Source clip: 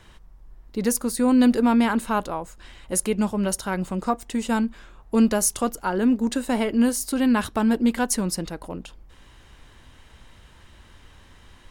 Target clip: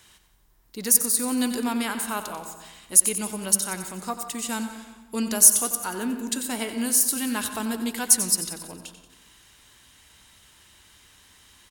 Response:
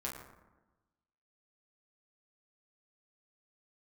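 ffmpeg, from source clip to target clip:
-filter_complex "[0:a]highpass=f=94:p=1,bandreject=f=530:w=12,aecho=1:1:91|182|273|364|455|546:0.266|0.149|0.0834|0.0467|0.0262|0.0147,asplit=2[a][b];[1:a]atrim=start_sample=2205,highshelf=f=10k:g=-12,adelay=122[c];[b][c]afir=irnorm=-1:irlink=0,volume=-12.5dB[d];[a][d]amix=inputs=2:normalize=0,crystalizer=i=6:c=0,volume=-9dB"

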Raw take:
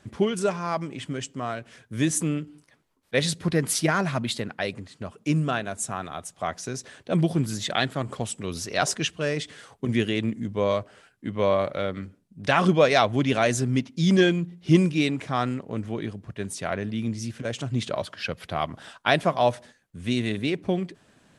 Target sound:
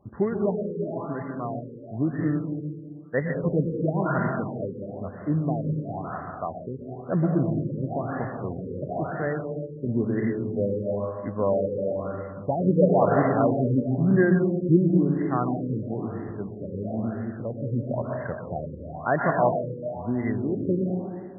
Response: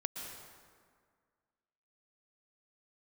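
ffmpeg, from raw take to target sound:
-filter_complex "[1:a]atrim=start_sample=2205[a];[0:a][a]afir=irnorm=-1:irlink=0,afftfilt=real='re*lt(b*sr/1024,550*pow(2100/550,0.5+0.5*sin(2*PI*1*pts/sr)))':imag='im*lt(b*sr/1024,550*pow(2100/550,0.5+0.5*sin(2*PI*1*pts/sr)))':win_size=1024:overlap=0.75"

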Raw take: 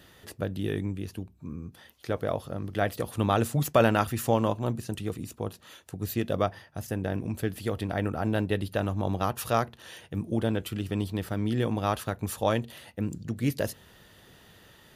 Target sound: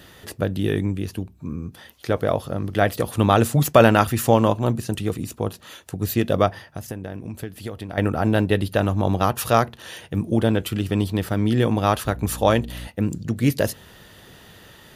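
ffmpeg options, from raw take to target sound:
-filter_complex "[0:a]asettb=1/sr,asplit=3[a][b][c];[a]atrim=end=6.644[d];[b]atrim=start=6.64:end=7.98,asetpts=PTS-STARTPTS,afade=t=in:d=0.004:c=qsin,afade=t=out:st=1.336:d=0.004:c=qsin,acompressor=threshold=-37dB:ratio=6[e];[c]atrim=start=7.976[f];[d][e]acrossfade=d=0.004:c1=hsin:c2=qsin[g];[g][f]acrossfade=d=0.004:c1=qsin:c2=hsin,asettb=1/sr,asplit=3[h][i][j];[h]atrim=end=12.054[k];[i]atrim=start=12.05:end=12.88,asetpts=PTS-STARTPTS,afade=t=in:d=0.004:c=qsin,afade=t=out:st=0.826:d=0.004:c=qsin,aeval=exprs='val(0)+0.00891*(sin(2*PI*60*n/s)+sin(2*PI*2*60*n/s)/2+sin(2*PI*3*60*n/s)/3+sin(2*PI*4*60*n/s)/4+sin(2*PI*5*60*n/s)/5)':c=same[l];[j]atrim=start=12.876[m];[k][l]acrossfade=d=0.004:c1=hsin:c2=qsin[n];[n][m]acrossfade=d=0.004:c1=qsin:c2=hsin,volume=8dB"

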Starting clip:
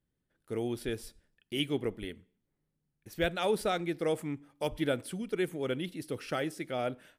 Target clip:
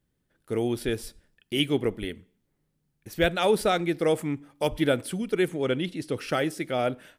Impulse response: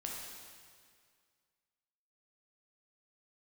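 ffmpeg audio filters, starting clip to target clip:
-filter_complex "[0:a]asettb=1/sr,asplit=3[a][b][c];[a]atrim=end=5.484[d];[b]atrim=start=5.48:end=6.18,asetpts=PTS-STARTPTS,afade=t=in:d=0.004:c=qsin,afade=t=out:st=0.696:d=0.004:c=qsin,lowpass=8.8k[e];[c]atrim=start=6.176[f];[d][e]acrossfade=d=0.004:c1=hsin:c2=qsin[g];[g][f]acrossfade=d=0.004:c1=qsin:c2=hsin,volume=7dB"

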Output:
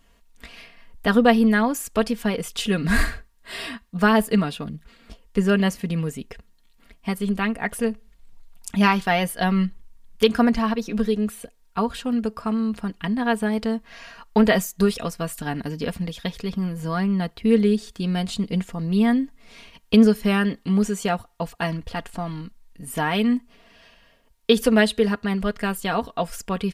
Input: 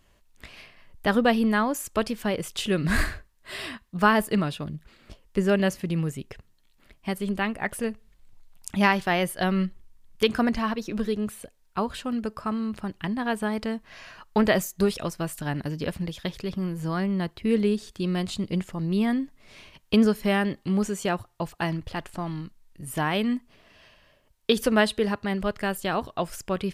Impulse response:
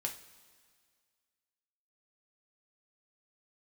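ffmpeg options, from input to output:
-af "aecho=1:1:4.3:0.62,volume=1.5dB"

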